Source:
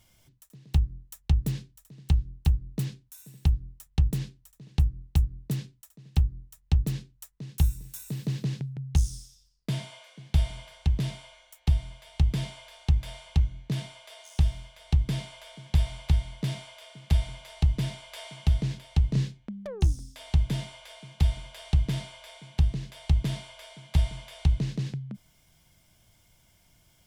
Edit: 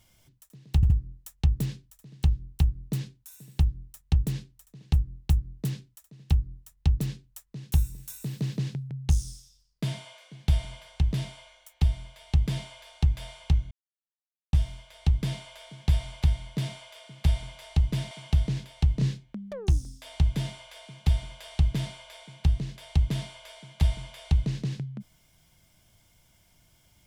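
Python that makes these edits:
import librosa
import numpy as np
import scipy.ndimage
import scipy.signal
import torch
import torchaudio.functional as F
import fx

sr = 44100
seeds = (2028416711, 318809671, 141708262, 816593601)

y = fx.edit(x, sr, fx.stutter(start_s=0.76, slice_s=0.07, count=3),
    fx.silence(start_s=13.57, length_s=0.82),
    fx.cut(start_s=17.97, length_s=0.28), tone=tone)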